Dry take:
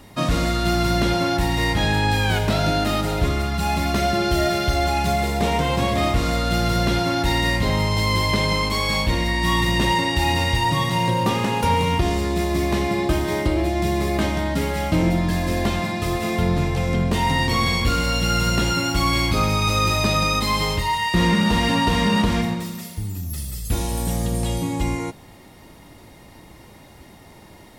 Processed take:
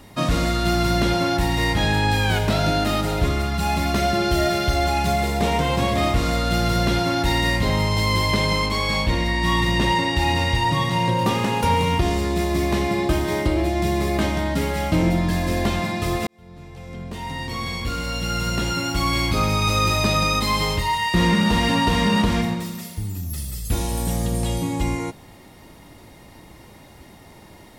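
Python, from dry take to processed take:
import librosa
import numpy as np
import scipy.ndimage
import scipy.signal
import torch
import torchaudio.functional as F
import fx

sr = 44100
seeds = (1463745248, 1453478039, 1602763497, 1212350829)

y = fx.high_shelf(x, sr, hz=8500.0, db=-8.0, at=(8.66, 11.19))
y = fx.edit(y, sr, fx.fade_in_span(start_s=16.27, length_s=3.4), tone=tone)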